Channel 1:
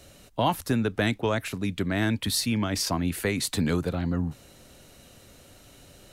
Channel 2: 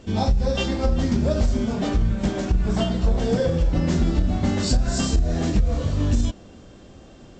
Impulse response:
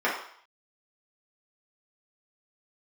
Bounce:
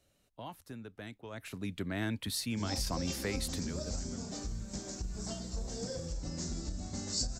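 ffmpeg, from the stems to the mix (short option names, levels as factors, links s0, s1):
-filter_complex "[0:a]volume=0.335,afade=t=in:st=1.3:d=0.26:silence=0.266073,afade=t=out:st=3.44:d=0.27:silence=0.375837[s0];[1:a]acrossover=split=6300[s1][s2];[s2]acompressor=threshold=0.00224:ratio=4:attack=1:release=60[s3];[s1][s3]amix=inputs=2:normalize=0,aexciter=amount=14.5:drive=3.2:freq=4700,adelay=2500,volume=0.112[s4];[s0][s4]amix=inputs=2:normalize=0"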